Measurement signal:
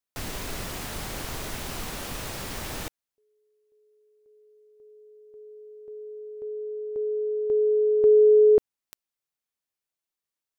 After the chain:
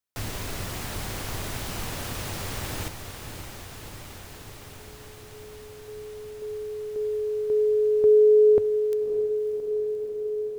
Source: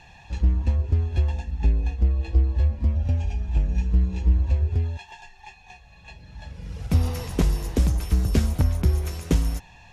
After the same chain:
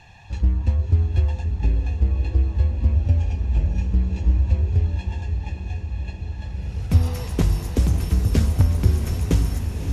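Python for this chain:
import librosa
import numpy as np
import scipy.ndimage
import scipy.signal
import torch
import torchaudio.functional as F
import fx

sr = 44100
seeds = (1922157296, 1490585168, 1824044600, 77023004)

p1 = fx.peak_eq(x, sr, hz=100.0, db=10.0, octaves=0.37)
y = p1 + fx.echo_diffused(p1, sr, ms=587, feedback_pct=79, wet_db=-9, dry=0)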